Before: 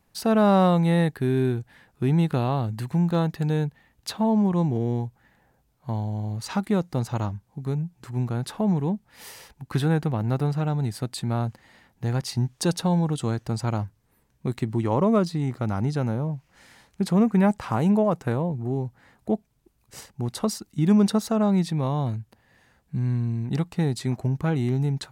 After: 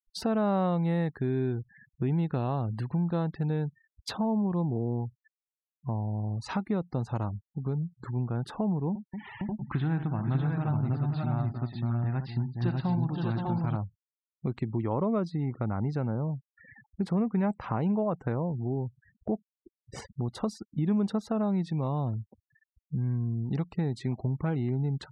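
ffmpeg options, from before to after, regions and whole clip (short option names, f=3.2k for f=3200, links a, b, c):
-filter_complex "[0:a]asettb=1/sr,asplit=3[a][b][c];[a]atrim=end=8.894[d];[b]atrim=start=8.89:end=13.76,asetpts=PTS-STARTPTS,afade=t=in:d=0.004:c=qsin,afade=t=out:st=4.866:d=0.004:c=qsin,lowpass=f=3.7k:w=0.5412,lowpass=f=3.7k:w=1.3066,equalizer=f=480:t=o:w=0.41:g=-13,aecho=1:1:61|243|520|596|604|700:0.299|0.211|0.422|0.668|0.422|0.178,atrim=end_sample=214767[e];[c]atrim=start=13.756[f];[d][e]acrossfade=d=0.004:c1=hsin:c2=qsin[g];[g][f]acrossfade=d=0.004:c1=qsin:c2=hsin,afftfilt=real='re*gte(hypot(re,im),0.00794)':imag='im*gte(hypot(re,im),0.00794)':win_size=1024:overlap=0.75,aemphasis=mode=reproduction:type=75fm,acompressor=threshold=-47dB:ratio=2,volume=8dB"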